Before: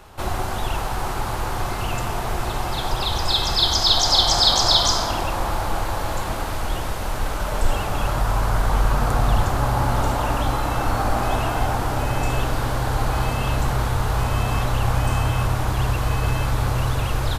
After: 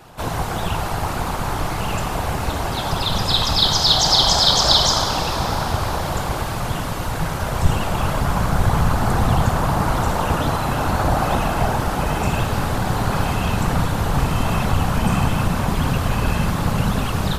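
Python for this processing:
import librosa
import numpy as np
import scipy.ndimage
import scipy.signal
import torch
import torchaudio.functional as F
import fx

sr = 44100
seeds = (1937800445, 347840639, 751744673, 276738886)

p1 = 10.0 ** (-11.5 / 20.0) * np.tanh(x / 10.0 ** (-11.5 / 20.0))
p2 = x + (p1 * librosa.db_to_amplitude(-7.0))
p3 = fx.cheby_harmonics(p2, sr, harmonics=(5, 7), levels_db=(-42, -36), full_scale_db=-1.0)
p4 = fx.whisperise(p3, sr, seeds[0])
p5 = fx.rev_schroeder(p4, sr, rt60_s=4.0, comb_ms=31, drr_db=9.0)
y = p5 * librosa.db_to_amplitude(-1.0)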